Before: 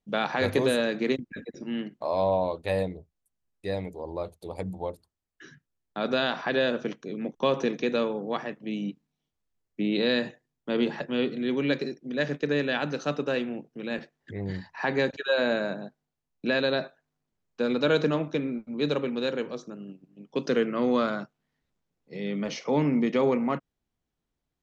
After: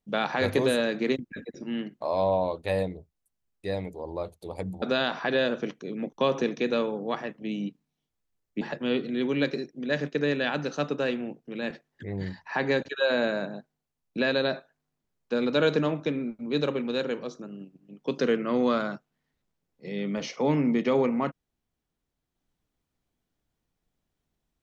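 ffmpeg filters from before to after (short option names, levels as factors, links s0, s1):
-filter_complex "[0:a]asplit=3[s0][s1][s2];[s0]atrim=end=4.822[s3];[s1]atrim=start=6.038:end=9.832[s4];[s2]atrim=start=10.888[s5];[s3][s4]acrossfade=d=0.004:c1=hsin:c2=hsin[s6];[s6][s5]acrossfade=d=0.004:c1=hsin:c2=hsin"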